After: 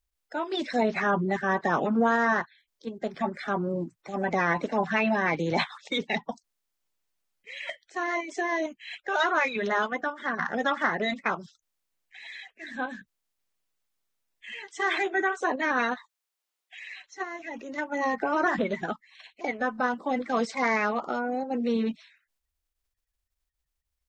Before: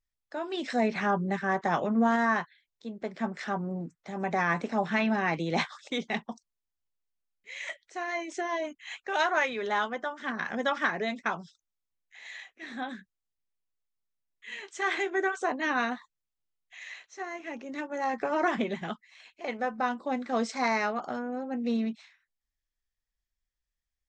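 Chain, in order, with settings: coarse spectral quantiser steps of 30 dB; dynamic bell 7.3 kHz, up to -4 dB, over -57 dBFS, Q 1.5; in parallel at 0 dB: level held to a coarse grid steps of 18 dB; 15.95–16.85 s: on the sum: high-pass 750 Hz -> 340 Hz

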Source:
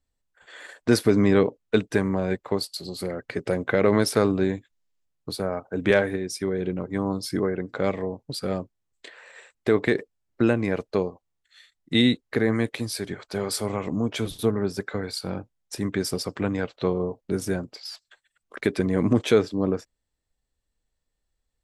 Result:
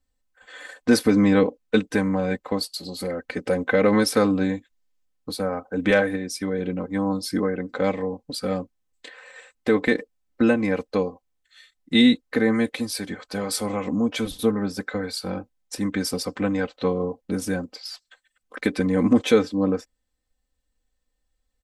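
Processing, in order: comb 3.9 ms, depth 76%

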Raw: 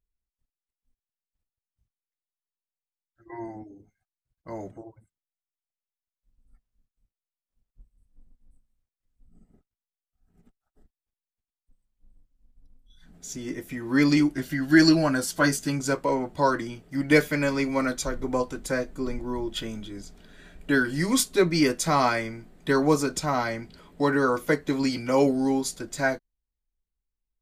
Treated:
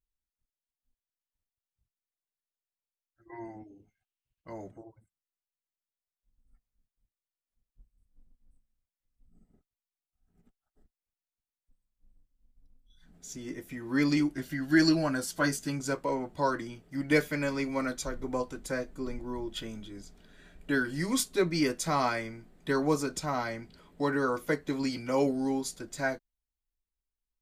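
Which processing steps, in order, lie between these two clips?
3.33–4.53 s: peaking EQ 2.8 kHz +12.5 dB 0.61 oct; trim -6 dB

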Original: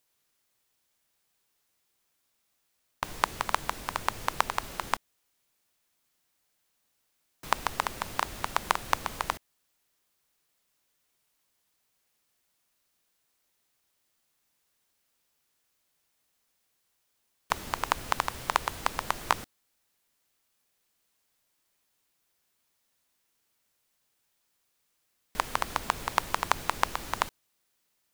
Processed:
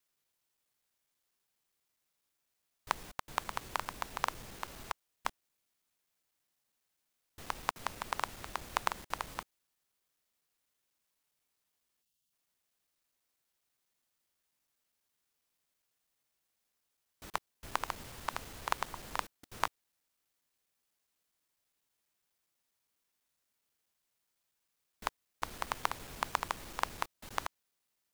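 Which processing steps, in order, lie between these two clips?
slices played last to first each 82 ms, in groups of 5; time-frequency box 12.02–12.32 s, 270–2600 Hz -13 dB; trim -7 dB

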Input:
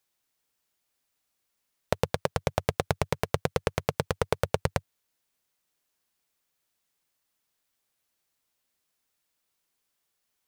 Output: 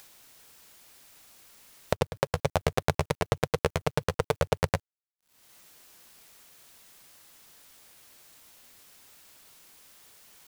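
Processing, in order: upward compressor, threshold -35 dBFS; word length cut 10-bit, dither none; tempo 1×

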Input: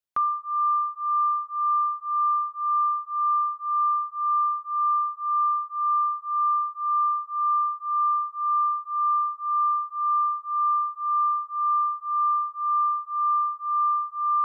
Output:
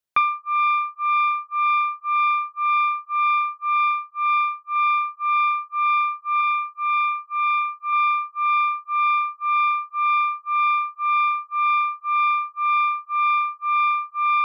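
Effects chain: self-modulated delay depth 0.096 ms; 6.41–7.93 s: band-stop 1.1 kHz, Q 9.7; transient shaper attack +5 dB, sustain -10 dB; 3.78–4.76 s: upward expansion 1.5:1, over -34 dBFS; trim +3.5 dB

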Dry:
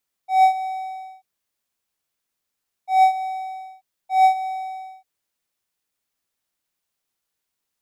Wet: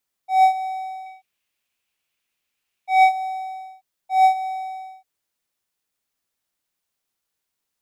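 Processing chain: 1.06–3.09 s: peaking EQ 2.6 kHz +11 dB 0.8 oct

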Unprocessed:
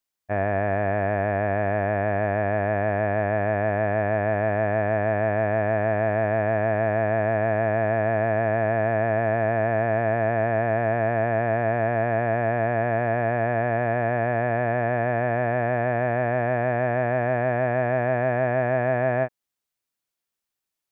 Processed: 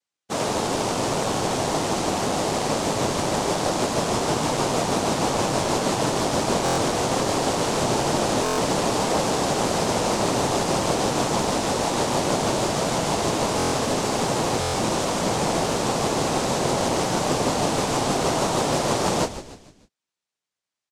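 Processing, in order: noise-vocoded speech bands 2; frequency-shifting echo 150 ms, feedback 45%, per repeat -110 Hz, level -12.5 dB; buffer glitch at 6.64/8.44/13.58/14.60 s, samples 1024, times 5

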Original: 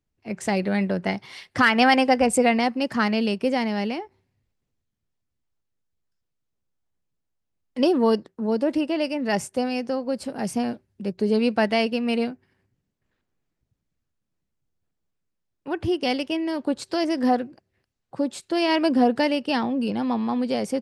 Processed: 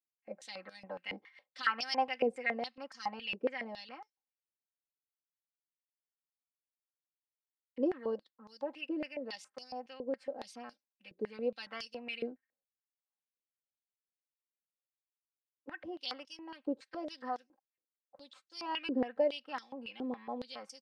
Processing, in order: gate -39 dBFS, range -14 dB; comb 3.8 ms, depth 98%; step-sequenced band-pass 7.2 Hz 410–5600 Hz; trim -6.5 dB

